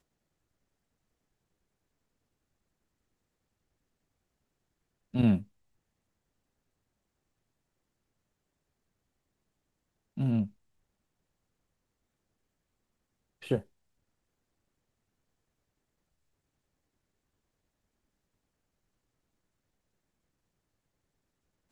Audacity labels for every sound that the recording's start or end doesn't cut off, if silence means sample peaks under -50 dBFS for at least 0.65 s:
5.140000	5.440000	sound
10.170000	10.500000	sound
13.420000	13.630000	sound